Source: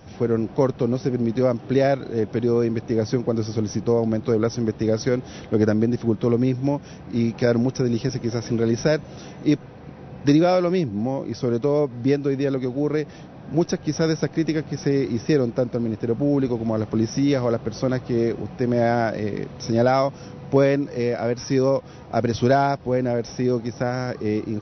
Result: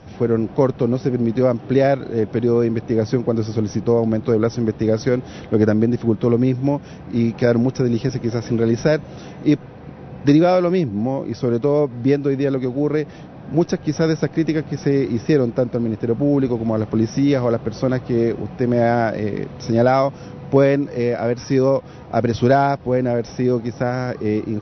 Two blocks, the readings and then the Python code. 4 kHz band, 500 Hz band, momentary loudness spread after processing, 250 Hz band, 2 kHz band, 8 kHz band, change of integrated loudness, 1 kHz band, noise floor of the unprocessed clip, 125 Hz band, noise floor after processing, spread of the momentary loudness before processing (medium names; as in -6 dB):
-0.5 dB, +3.0 dB, 6 LU, +3.5 dB, +2.5 dB, no reading, +3.5 dB, +3.0 dB, -41 dBFS, +3.5 dB, -38 dBFS, 6 LU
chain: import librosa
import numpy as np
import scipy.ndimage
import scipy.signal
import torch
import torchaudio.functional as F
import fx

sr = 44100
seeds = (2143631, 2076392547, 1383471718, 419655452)

y = fx.air_absorb(x, sr, metres=96.0)
y = y * librosa.db_to_amplitude(3.5)